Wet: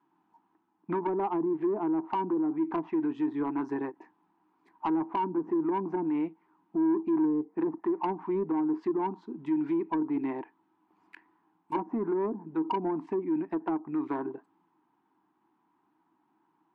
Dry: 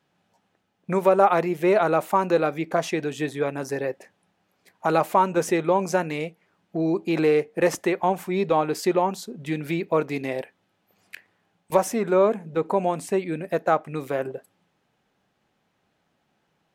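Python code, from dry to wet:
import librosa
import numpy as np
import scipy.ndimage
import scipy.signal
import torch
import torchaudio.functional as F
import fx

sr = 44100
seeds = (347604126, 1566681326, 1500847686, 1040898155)

p1 = fx.env_lowpass_down(x, sr, base_hz=460.0, full_db=-17.5)
p2 = fx.double_bandpass(p1, sr, hz=550.0, octaves=1.6)
p3 = fx.over_compress(p2, sr, threshold_db=-36.0, ratio=-1.0)
p4 = p2 + (p3 * 10.0 ** (-2.0 / 20.0))
p5 = 10.0 ** (-23.5 / 20.0) * np.tanh(p4 / 10.0 ** (-23.5 / 20.0))
p6 = fx.end_taper(p5, sr, db_per_s=430.0)
y = p6 * 10.0 ** (2.5 / 20.0)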